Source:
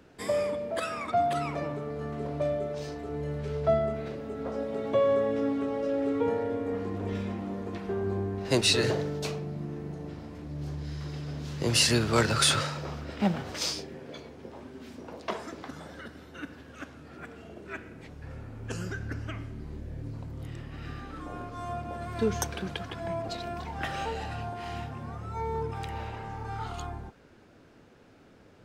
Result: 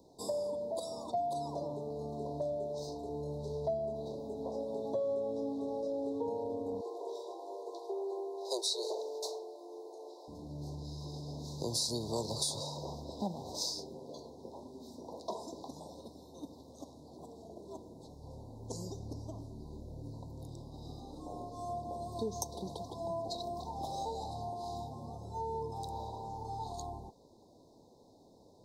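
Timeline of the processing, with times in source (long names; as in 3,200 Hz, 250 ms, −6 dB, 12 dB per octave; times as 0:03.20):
0:06.81–0:10.28: Butterworth high-pass 350 Hz 72 dB per octave
whole clip: Chebyshev band-stop filter 1,000–3,800 Hz, order 5; low-shelf EQ 260 Hz −9 dB; downward compressor 2.5 to 1, threshold −35 dBFS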